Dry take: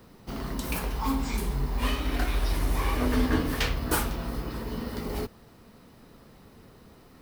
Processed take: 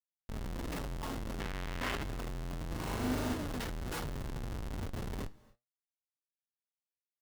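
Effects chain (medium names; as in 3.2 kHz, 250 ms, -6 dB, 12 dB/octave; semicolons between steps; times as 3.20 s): flange 1.3 Hz, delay 7 ms, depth 2.8 ms, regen -37%; Schmitt trigger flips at -33 dBFS; 1.40–2.03 s: peaking EQ 2.1 kHz +10.5 dB 2.2 oct; 2.67–3.34 s: flutter echo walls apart 6.8 m, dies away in 1.4 s; on a send at -21.5 dB: reverberation, pre-delay 3 ms; on the sum: flange 0.3 Hz, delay 2.8 ms, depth 8.6 ms, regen +76%; band-stop 2.4 kHz, Q 21; trim +1 dB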